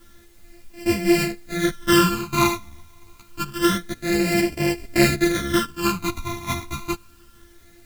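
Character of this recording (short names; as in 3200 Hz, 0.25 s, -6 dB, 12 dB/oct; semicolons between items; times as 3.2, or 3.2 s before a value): a buzz of ramps at a fixed pitch in blocks of 128 samples; phasing stages 12, 0.27 Hz, lowest notch 510–1200 Hz; a quantiser's noise floor 10-bit, dither triangular; a shimmering, thickened sound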